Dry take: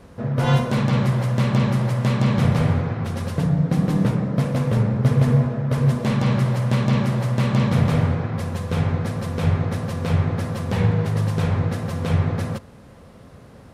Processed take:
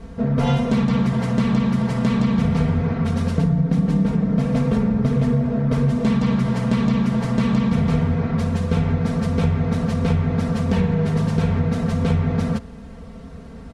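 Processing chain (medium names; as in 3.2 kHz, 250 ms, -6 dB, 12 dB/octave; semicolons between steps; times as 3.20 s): low-pass 8.4 kHz 12 dB/octave; bass shelf 160 Hz +12 dB; comb 4.4 ms, depth 98%; compression, threshold -15 dBFS, peak gain reduction 8.5 dB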